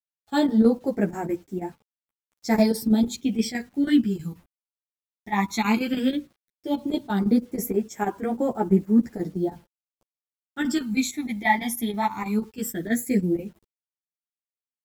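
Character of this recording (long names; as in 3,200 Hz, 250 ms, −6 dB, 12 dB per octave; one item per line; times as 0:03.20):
phaser sweep stages 12, 0.15 Hz, lowest notch 460–4,300 Hz
a quantiser's noise floor 10 bits, dither none
chopped level 6.2 Hz, depth 65%, duty 80%
a shimmering, thickened sound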